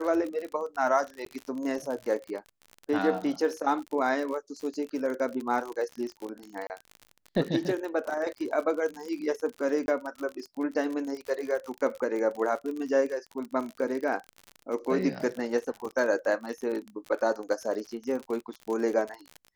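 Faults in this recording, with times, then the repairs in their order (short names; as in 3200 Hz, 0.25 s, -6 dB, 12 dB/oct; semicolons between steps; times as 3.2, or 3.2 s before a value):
crackle 53/s -33 dBFS
1.25–1.26 gap 13 ms
6.67–6.7 gap 29 ms
9.86–9.88 gap 21 ms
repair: de-click; interpolate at 1.25, 13 ms; interpolate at 6.67, 29 ms; interpolate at 9.86, 21 ms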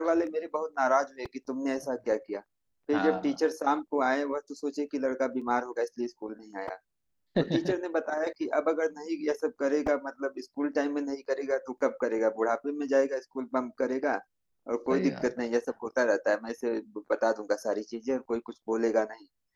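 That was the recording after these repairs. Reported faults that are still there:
none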